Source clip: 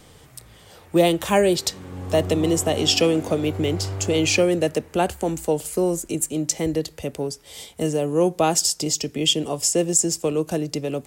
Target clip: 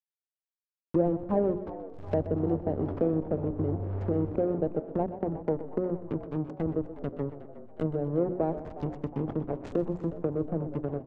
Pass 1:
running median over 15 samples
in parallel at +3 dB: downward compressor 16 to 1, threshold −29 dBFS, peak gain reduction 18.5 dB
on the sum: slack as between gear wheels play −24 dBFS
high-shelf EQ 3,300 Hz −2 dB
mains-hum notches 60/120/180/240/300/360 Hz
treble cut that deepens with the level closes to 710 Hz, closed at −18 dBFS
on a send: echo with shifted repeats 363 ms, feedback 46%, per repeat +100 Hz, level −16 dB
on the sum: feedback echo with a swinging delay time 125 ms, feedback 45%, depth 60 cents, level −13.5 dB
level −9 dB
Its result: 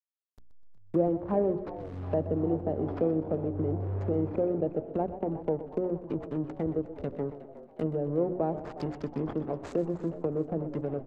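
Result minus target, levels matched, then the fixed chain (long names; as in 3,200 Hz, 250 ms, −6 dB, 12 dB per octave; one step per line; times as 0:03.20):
downward compressor: peak gain reduction +6 dB; slack as between gear wheels: distortion −7 dB
running median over 15 samples
in parallel at +3 dB: downward compressor 16 to 1, threshold −22.5 dBFS, peak gain reduction 12 dB
on the sum: slack as between gear wheels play −14.5 dBFS
high-shelf EQ 3,300 Hz −2 dB
mains-hum notches 60/120/180/240/300/360 Hz
treble cut that deepens with the level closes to 710 Hz, closed at −18 dBFS
on a send: echo with shifted repeats 363 ms, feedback 46%, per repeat +100 Hz, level −16 dB
on the sum: feedback echo with a swinging delay time 125 ms, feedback 45%, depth 60 cents, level −13.5 dB
level −9 dB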